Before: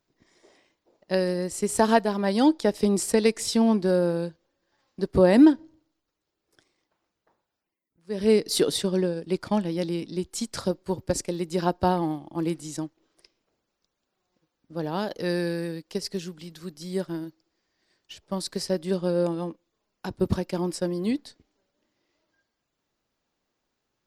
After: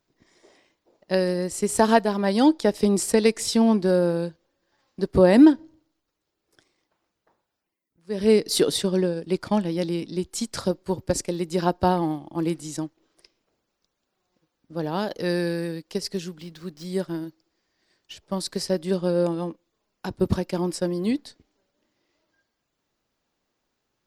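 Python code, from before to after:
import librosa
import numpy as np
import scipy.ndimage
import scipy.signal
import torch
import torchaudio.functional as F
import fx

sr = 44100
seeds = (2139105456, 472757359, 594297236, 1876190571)

y = fx.median_filter(x, sr, points=5, at=(16.35, 16.85))
y = y * 10.0 ** (2.0 / 20.0)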